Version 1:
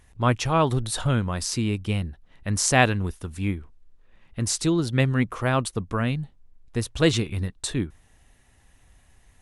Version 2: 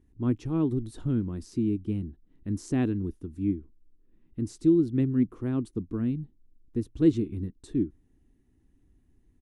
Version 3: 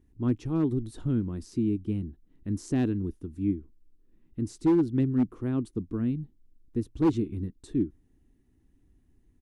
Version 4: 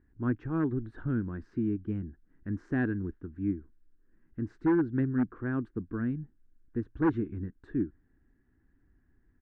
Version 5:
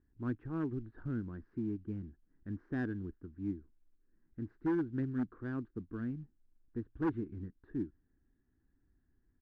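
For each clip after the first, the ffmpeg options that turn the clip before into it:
-af "firequalizer=gain_entry='entry(130,0);entry(310,12);entry(560,-13);entry(2500,-16)':delay=0.05:min_phase=1,volume=-7dB"
-af "asoftclip=type=hard:threshold=-17.5dB"
-af "lowpass=f=1.6k:t=q:w=6.5,volume=-3.5dB"
-af "acrusher=bits=8:mode=log:mix=0:aa=0.000001,adynamicsmooth=sensitivity=3:basefreq=2.4k,volume=-7dB"

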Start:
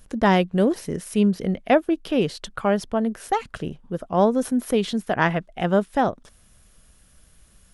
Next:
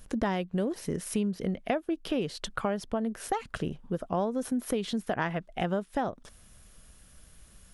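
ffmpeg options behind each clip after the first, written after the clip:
-af "acompressor=threshold=-27dB:ratio=5"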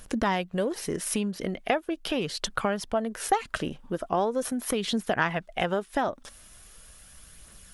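-af "lowshelf=f=460:g=-8.5,aphaser=in_gain=1:out_gain=1:delay=3.8:decay=0.29:speed=0.4:type=triangular,volume=7dB"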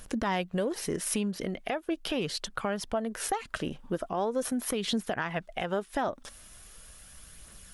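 -af "alimiter=limit=-19.5dB:level=0:latency=1:release=222"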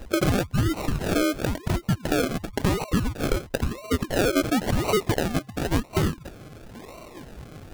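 -af "afftfilt=real='real(if(lt(b,960),b+48*(1-2*mod(floor(b/48),2)),b),0)':imag='imag(if(lt(b,960),b+48*(1-2*mod(floor(b/48),2)),b),0)':win_size=2048:overlap=0.75,acrusher=samples=37:mix=1:aa=0.000001:lfo=1:lforange=22.2:lforate=0.96,volume=7.5dB"

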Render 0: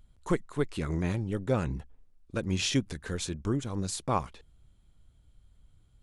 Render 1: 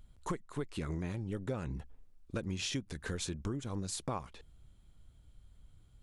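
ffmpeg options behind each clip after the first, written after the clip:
-af "acompressor=threshold=-35dB:ratio=6,volume=1dB"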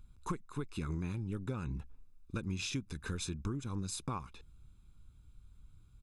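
-af "aecho=1:1:0.8:0.63,volume=-3dB"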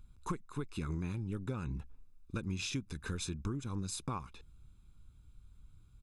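-af anull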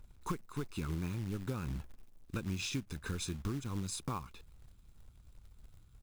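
-af "acrusher=bits=4:mode=log:mix=0:aa=0.000001"

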